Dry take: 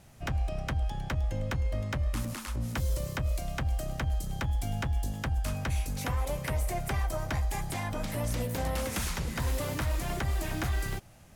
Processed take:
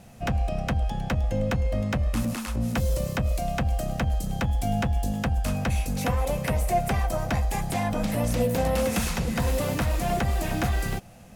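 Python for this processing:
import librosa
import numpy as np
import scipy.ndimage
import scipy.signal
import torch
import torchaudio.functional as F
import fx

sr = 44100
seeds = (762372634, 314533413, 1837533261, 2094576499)

y = fx.small_body(x, sr, hz=(210.0, 500.0, 700.0, 2600.0), ring_ms=45, db=9)
y = y * 10.0 ** (4.0 / 20.0)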